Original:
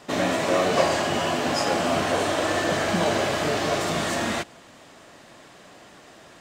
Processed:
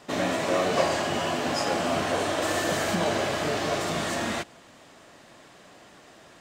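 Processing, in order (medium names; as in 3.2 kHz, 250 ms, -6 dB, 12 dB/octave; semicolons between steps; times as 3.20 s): 2.42–2.95 s: treble shelf 8.3 kHz +11.5 dB; trim -3 dB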